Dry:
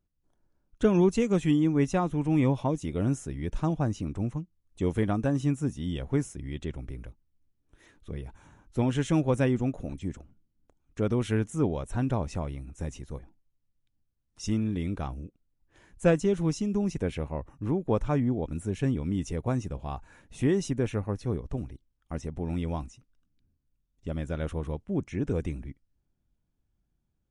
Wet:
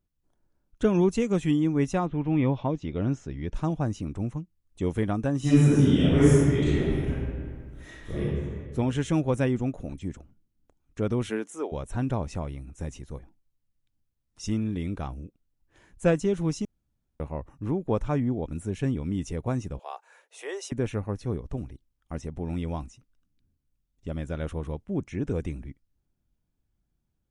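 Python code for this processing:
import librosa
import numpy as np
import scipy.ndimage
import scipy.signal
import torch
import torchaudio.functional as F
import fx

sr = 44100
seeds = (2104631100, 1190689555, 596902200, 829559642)

y = fx.lowpass(x, sr, hz=fx.line((2.05, 3400.0), (3.53, 6300.0)), slope=24, at=(2.05, 3.53), fade=0.02)
y = fx.reverb_throw(y, sr, start_s=5.39, length_s=2.81, rt60_s=2.0, drr_db=-12.0)
y = fx.highpass(y, sr, hz=fx.line((11.28, 200.0), (11.71, 450.0)), slope=24, at=(11.28, 11.71), fade=0.02)
y = fx.steep_highpass(y, sr, hz=430.0, slope=48, at=(19.79, 20.72))
y = fx.edit(y, sr, fx.room_tone_fill(start_s=16.65, length_s=0.55), tone=tone)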